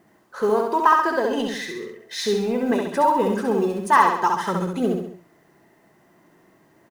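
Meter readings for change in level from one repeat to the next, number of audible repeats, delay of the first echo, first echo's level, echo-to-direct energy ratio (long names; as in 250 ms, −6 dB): −6.0 dB, 4, 67 ms, −3.5 dB, −2.5 dB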